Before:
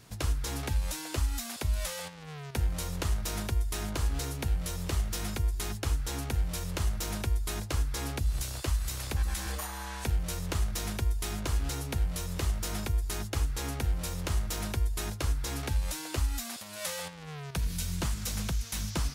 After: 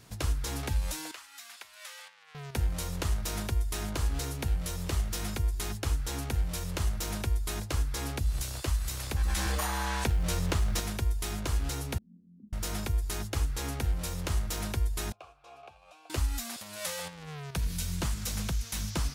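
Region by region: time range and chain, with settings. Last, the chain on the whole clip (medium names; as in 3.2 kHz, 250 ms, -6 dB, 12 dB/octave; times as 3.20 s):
1.11–2.35 s: high-pass 1.5 kHz + treble shelf 3.5 kHz -12 dB
9.23–10.80 s: treble shelf 7.8 kHz -6 dB + companded quantiser 8-bit + level flattener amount 50%
11.98–12.53 s: comb filter that takes the minimum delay 0.59 ms + Butterworth band-pass 220 Hz, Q 5
15.12–16.10 s: vowel filter a + peaking EQ 260 Hz -11.5 dB 0.32 oct
whole clip: none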